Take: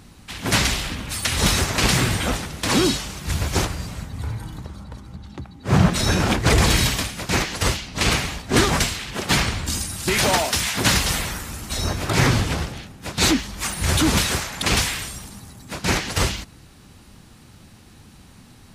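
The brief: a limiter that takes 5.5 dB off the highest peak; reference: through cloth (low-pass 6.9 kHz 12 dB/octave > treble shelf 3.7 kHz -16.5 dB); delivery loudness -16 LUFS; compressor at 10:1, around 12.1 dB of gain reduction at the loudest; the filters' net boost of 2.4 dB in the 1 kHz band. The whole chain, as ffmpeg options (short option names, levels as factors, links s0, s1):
-af "equalizer=f=1000:t=o:g=4.5,acompressor=threshold=0.0708:ratio=10,alimiter=limit=0.133:level=0:latency=1,lowpass=6900,highshelf=f=3700:g=-16.5,volume=6.31"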